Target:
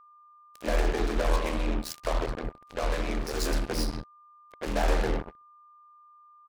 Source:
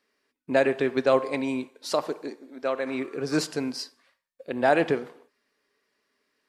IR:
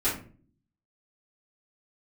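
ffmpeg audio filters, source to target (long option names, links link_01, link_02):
-filter_complex "[0:a]aeval=exprs='if(lt(val(0),0),0.251*val(0),val(0))':channel_layout=same,bandreject=frequency=50:width_type=h:width=6,bandreject=frequency=100:width_type=h:width=6,bandreject=frequency=150:width_type=h:width=6,bandreject=frequency=200:width_type=h:width=6,bandreject=frequency=250:width_type=h:width=6,bandreject=frequency=300:width_type=h:width=6,bandreject=frequency=350:width_type=h:width=6,asplit=2[link_01][link_02];[1:a]atrim=start_sample=2205,asetrate=27342,aresample=44100[link_03];[link_02][link_03]afir=irnorm=-1:irlink=0,volume=-20dB[link_04];[link_01][link_04]amix=inputs=2:normalize=0,asoftclip=type=tanh:threshold=-20.5dB,equalizer=frequency=84:width_type=o:width=0.34:gain=-10,aeval=exprs='val(0)*sin(2*PI*40*n/s)':channel_layout=same,acrossover=split=220|2900[link_05][link_06][link_07];[link_06]adelay=130[link_08];[link_05]adelay=180[link_09];[link_09][link_08][link_07]amix=inputs=3:normalize=0,acrusher=bits=5:mix=0:aa=0.5,aeval=exprs='val(0)+0.00126*sin(2*PI*1200*n/s)':channel_layout=same,volume=5dB"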